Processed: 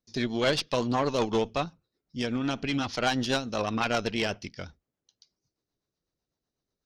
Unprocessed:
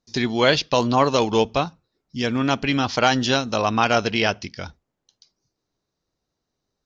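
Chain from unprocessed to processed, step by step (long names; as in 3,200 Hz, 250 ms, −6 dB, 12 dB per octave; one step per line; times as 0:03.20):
rotating-speaker cabinet horn 8 Hz
tube saturation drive 14 dB, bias 0.55
level −2.5 dB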